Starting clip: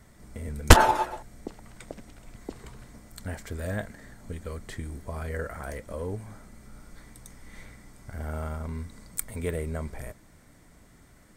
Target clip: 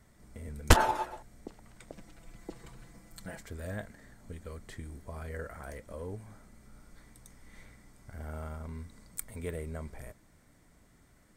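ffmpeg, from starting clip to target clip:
ffmpeg -i in.wav -filter_complex "[0:a]asettb=1/sr,asplit=3[link_01][link_02][link_03];[link_01]atrim=end=1.934[link_04];[link_02]atrim=start=1.93:end=3.41,asetpts=PTS-STARTPTS,afade=type=in:duration=0.004:curve=qsin,afade=type=out:start_time=1.476:duration=0.004:curve=qsin,aecho=1:1:6:0.82,atrim=end_sample=65268[link_05];[link_03]atrim=start=3.406[link_06];[link_04][link_05]acrossfade=duration=0.004:curve1=hsin:curve2=qsin[link_07];[link_07][link_06]acrossfade=duration=0.004:curve1=qsin:curve2=hsin,volume=-7dB" out.wav

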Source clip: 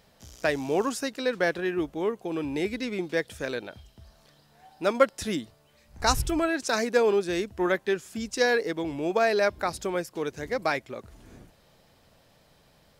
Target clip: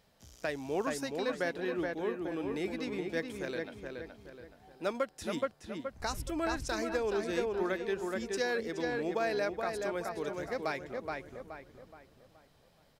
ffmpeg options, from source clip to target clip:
ffmpeg -i in.wav -filter_complex "[0:a]asplit=2[link_01][link_02];[link_02]adelay=423,lowpass=frequency=2700:poles=1,volume=-4dB,asplit=2[link_03][link_04];[link_04]adelay=423,lowpass=frequency=2700:poles=1,volume=0.41,asplit=2[link_05][link_06];[link_06]adelay=423,lowpass=frequency=2700:poles=1,volume=0.41,asplit=2[link_07][link_08];[link_08]adelay=423,lowpass=frequency=2700:poles=1,volume=0.41,asplit=2[link_09][link_10];[link_10]adelay=423,lowpass=frequency=2700:poles=1,volume=0.41[link_11];[link_01][link_03][link_05][link_07][link_09][link_11]amix=inputs=6:normalize=0,alimiter=limit=-13.5dB:level=0:latency=1:release=359,volume=-7.5dB" out.wav

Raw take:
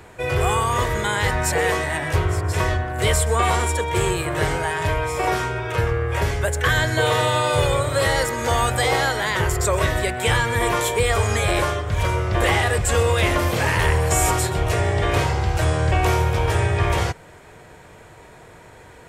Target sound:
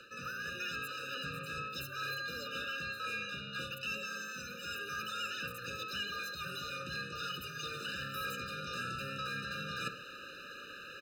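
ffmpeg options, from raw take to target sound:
ffmpeg -i in.wav -filter_complex "[0:a]acrossover=split=110|6400[link_01][link_02][link_03];[link_02]asoftclip=type=tanh:threshold=-18dB[link_04];[link_01][link_04][link_03]amix=inputs=3:normalize=0,asetrate=76440,aresample=44100,acrossover=split=390 5900:gain=0.126 1 0.126[link_05][link_06][link_07];[link_05][link_06][link_07]amix=inputs=3:normalize=0,asplit=2[link_08][link_09];[link_09]adelay=64,lowpass=frequency=1100:poles=1,volume=-15dB,asplit=2[link_10][link_11];[link_11]adelay=64,lowpass=frequency=1100:poles=1,volume=0.32,asplit=2[link_12][link_13];[link_13]adelay=64,lowpass=frequency=1100:poles=1,volume=0.32[link_14];[link_08][link_10][link_12][link_14]amix=inputs=4:normalize=0,areverse,acompressor=threshold=-35dB:ratio=20,areverse,asplit=2[link_15][link_16];[link_16]asetrate=33038,aresample=44100,atempo=1.33484,volume=-10dB[link_17];[link_15][link_17]amix=inputs=2:normalize=0,highshelf=frequency=6500:gain=7.5,afftfilt=real='re*eq(mod(floor(b*sr/1024/600),2),0)':imag='im*eq(mod(floor(b*sr/1024/600),2),0)':win_size=1024:overlap=0.75,volume=1dB" out.wav

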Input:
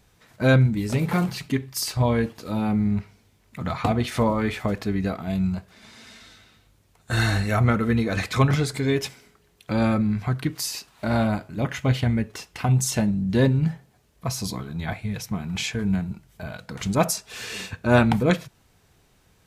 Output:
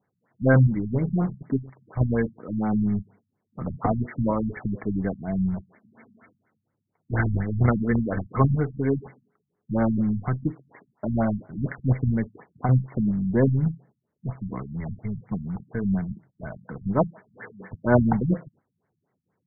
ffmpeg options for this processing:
ffmpeg -i in.wav -filter_complex "[0:a]agate=range=-11dB:threshold=-48dB:ratio=16:detection=peak,acrossover=split=110|2800[link_01][link_02][link_03];[link_01]acrusher=bits=5:dc=4:mix=0:aa=0.000001[link_04];[link_04][link_02][link_03]amix=inputs=3:normalize=0,afftfilt=real='re*lt(b*sr/1024,220*pow(2300/220,0.5+0.5*sin(2*PI*4.2*pts/sr)))':imag='im*lt(b*sr/1024,220*pow(2300/220,0.5+0.5*sin(2*PI*4.2*pts/sr)))':win_size=1024:overlap=0.75" out.wav

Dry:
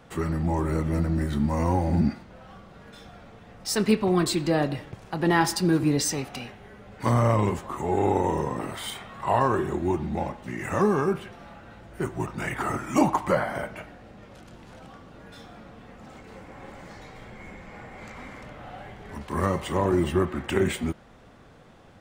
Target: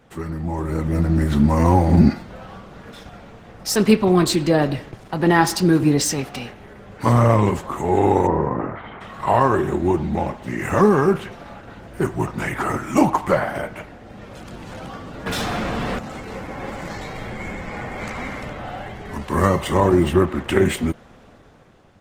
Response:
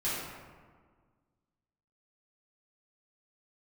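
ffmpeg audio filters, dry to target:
-filter_complex "[0:a]asplit=3[link_01][link_02][link_03];[link_01]afade=type=out:start_time=8.26:duration=0.02[link_04];[link_02]lowpass=frequency=1800:width=0.5412,lowpass=frequency=1800:width=1.3066,afade=type=in:start_time=8.26:duration=0.02,afade=type=out:start_time=9:duration=0.02[link_05];[link_03]afade=type=in:start_time=9:duration=0.02[link_06];[link_04][link_05][link_06]amix=inputs=3:normalize=0,dynaudnorm=framelen=220:gausssize=9:maxgain=13.5dB,asettb=1/sr,asplit=3[link_07][link_08][link_09];[link_07]atrim=end=15.264[link_10];[link_08]atrim=start=15.26:end=15.99,asetpts=PTS-STARTPTS,afade=type=in:duration=0.004:curve=qsin,afade=type=out:start_time=0.726:duration=0.004:curve=qsin,aeval=exprs='0.1*sin(PI/2*3.16*val(0)/0.1)':channel_layout=same[link_11];[link_09]atrim=start=15.986[link_12];[link_10][link_11]acrossfade=duration=0.004:curve1=hsin:curve2=qsin[link_13];[link_13][link_12]acrossfade=duration=0.004:curve1=qsin:curve2=hsin,volume=-1dB" -ar 48000 -c:a libopus -b:a 16k

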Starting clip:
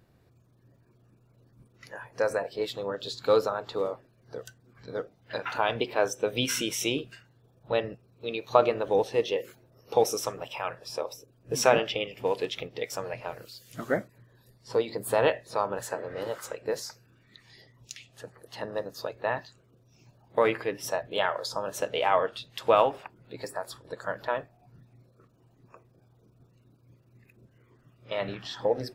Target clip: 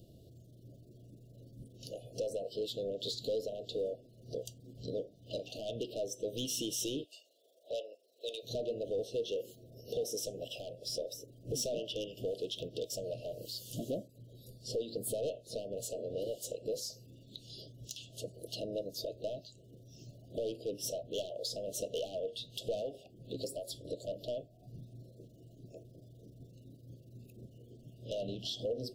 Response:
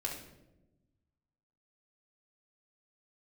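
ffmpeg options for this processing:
-filter_complex "[0:a]asplit=3[link_01][link_02][link_03];[link_01]afade=type=out:start_time=7.03:duration=0.02[link_04];[link_02]highpass=frequency=550:width=0.5412,highpass=frequency=550:width=1.3066,afade=type=in:start_time=7.03:duration=0.02,afade=type=out:start_time=8.42:duration=0.02[link_05];[link_03]afade=type=in:start_time=8.42:duration=0.02[link_06];[link_04][link_05][link_06]amix=inputs=3:normalize=0,acompressor=threshold=-43dB:ratio=2.5,asoftclip=type=hard:threshold=-33.5dB,flanger=delay=3.1:depth=1.2:regen=87:speed=0.16:shape=sinusoidal,asoftclip=type=tanh:threshold=-38.5dB,asuperstop=centerf=1400:order=20:qfactor=0.64,volume=11dB"

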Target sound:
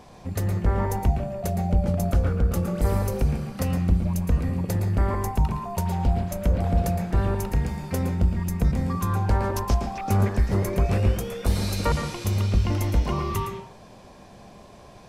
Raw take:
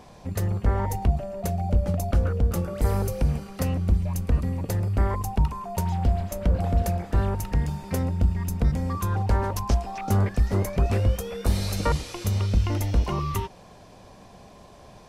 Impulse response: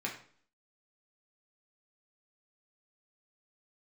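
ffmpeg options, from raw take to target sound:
-filter_complex "[0:a]asplit=2[link_01][link_02];[1:a]atrim=start_sample=2205,adelay=114[link_03];[link_02][link_03]afir=irnorm=-1:irlink=0,volume=-7dB[link_04];[link_01][link_04]amix=inputs=2:normalize=0"

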